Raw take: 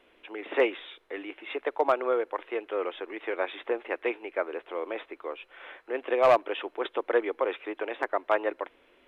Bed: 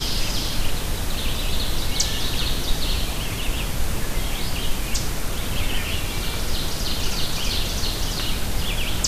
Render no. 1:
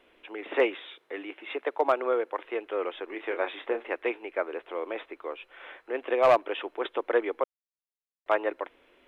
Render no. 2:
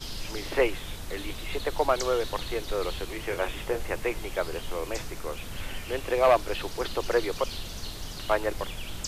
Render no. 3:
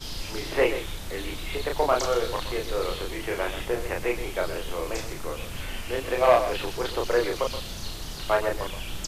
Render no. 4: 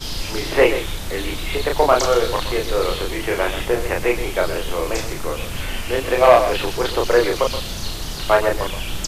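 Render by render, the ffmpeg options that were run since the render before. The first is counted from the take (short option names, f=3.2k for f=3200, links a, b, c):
-filter_complex "[0:a]asettb=1/sr,asplit=3[a][b][c];[a]atrim=end=0.734[d];[b]atrim=start=0.73:end=2.45,asetpts=PTS-STARTPTS,afade=t=in:d=0.004:c=qsin,afade=t=out:st=1.716:d=0.004:c=qsin,highpass=f=120:w=0.5412,highpass=f=120:w=1.3066[e];[c]atrim=start=2.446[f];[d][e]acrossfade=d=0.004:c1=hsin:c2=qsin[g];[g][f]acrossfade=d=0.004:c1=qsin:c2=hsin,asettb=1/sr,asplit=3[h][i][j];[h]atrim=end=3.084[k];[i]atrim=start=3.08:end=3.92,asetpts=PTS-STARTPTS,afade=t=in:d=0.004:c=qsin,afade=t=out:st=0.836:d=0.004:c=qsin,asplit=2[l][m];[m]adelay=30,volume=-8.5dB[n];[l][n]amix=inputs=2:normalize=0,atrim=end_sample=37044[o];[j]atrim=start=3.916[p];[k][o]acrossfade=d=0.004:c1=hsin:c2=qsin[q];[q][p]acrossfade=d=0.004:c1=qsin:c2=hsin,asplit=3[r][s][t];[r]atrim=end=7.44,asetpts=PTS-STARTPTS,afade=t=out:st=7.436:d=0.004:c=hsin[u];[s]atrim=start=7.44:end=8.26,asetpts=PTS-STARTPTS,volume=0[v];[t]atrim=start=8.26,asetpts=PTS-STARTPTS,afade=t=in:d=0.004:c=hsin[w];[u][v][w]concat=n=3:v=0:a=1"
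-filter_complex "[1:a]volume=-13dB[a];[0:a][a]amix=inputs=2:normalize=0"
-filter_complex "[0:a]asplit=2[a][b];[b]adelay=33,volume=-3dB[c];[a][c]amix=inputs=2:normalize=0,aecho=1:1:125:0.282"
-af "volume=8dB,alimiter=limit=-1dB:level=0:latency=1"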